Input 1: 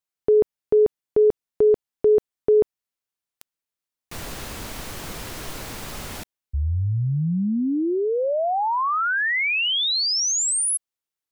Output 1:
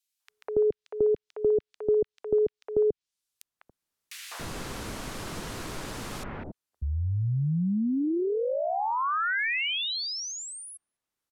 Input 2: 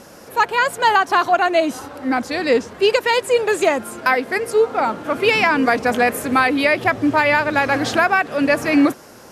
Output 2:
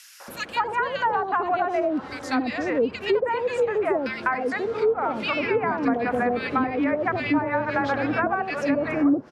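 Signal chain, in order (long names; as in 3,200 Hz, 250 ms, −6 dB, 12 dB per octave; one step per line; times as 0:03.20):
three-band delay without the direct sound highs, mids, lows 200/280 ms, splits 670/2,200 Hz
treble cut that deepens with the level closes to 920 Hz, closed at −13 dBFS
multiband upward and downward compressor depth 40%
level −4 dB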